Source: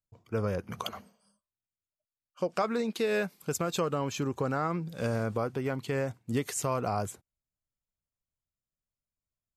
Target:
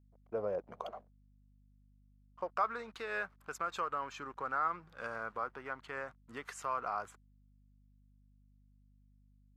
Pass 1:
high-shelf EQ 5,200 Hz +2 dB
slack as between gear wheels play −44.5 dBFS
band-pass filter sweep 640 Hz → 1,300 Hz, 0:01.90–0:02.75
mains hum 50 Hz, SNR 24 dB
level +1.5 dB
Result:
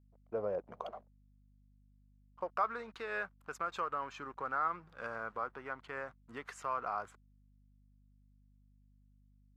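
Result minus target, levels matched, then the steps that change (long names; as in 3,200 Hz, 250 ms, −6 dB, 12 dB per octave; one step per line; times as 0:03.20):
8,000 Hz band −4.5 dB
change: high-shelf EQ 5,200 Hz +9 dB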